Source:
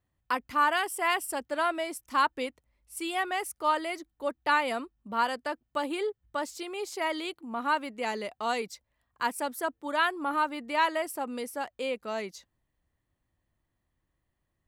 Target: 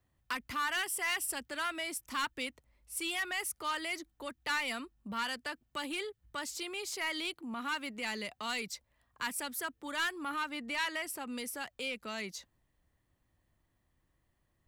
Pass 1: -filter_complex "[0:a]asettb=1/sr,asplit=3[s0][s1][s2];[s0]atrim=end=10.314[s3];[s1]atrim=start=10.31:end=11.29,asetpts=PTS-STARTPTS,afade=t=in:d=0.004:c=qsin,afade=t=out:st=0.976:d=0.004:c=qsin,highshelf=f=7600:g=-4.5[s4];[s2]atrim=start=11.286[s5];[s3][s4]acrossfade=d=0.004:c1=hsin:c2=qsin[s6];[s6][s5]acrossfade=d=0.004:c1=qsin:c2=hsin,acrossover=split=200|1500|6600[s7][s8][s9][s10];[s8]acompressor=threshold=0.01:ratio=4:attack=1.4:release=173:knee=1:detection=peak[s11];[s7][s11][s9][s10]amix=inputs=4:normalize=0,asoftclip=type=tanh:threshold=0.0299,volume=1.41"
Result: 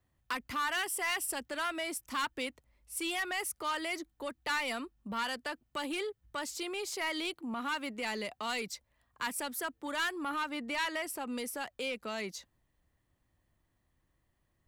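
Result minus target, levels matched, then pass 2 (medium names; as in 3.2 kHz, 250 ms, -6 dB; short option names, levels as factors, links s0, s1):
compression: peak gain reduction -5.5 dB
-filter_complex "[0:a]asettb=1/sr,asplit=3[s0][s1][s2];[s0]atrim=end=10.314[s3];[s1]atrim=start=10.31:end=11.29,asetpts=PTS-STARTPTS,afade=t=in:d=0.004:c=qsin,afade=t=out:st=0.976:d=0.004:c=qsin,highshelf=f=7600:g=-4.5[s4];[s2]atrim=start=11.286[s5];[s3][s4]acrossfade=d=0.004:c1=hsin:c2=qsin[s6];[s6][s5]acrossfade=d=0.004:c1=qsin:c2=hsin,acrossover=split=200|1500|6600[s7][s8][s9][s10];[s8]acompressor=threshold=0.00422:ratio=4:attack=1.4:release=173:knee=1:detection=peak[s11];[s7][s11][s9][s10]amix=inputs=4:normalize=0,asoftclip=type=tanh:threshold=0.0299,volume=1.41"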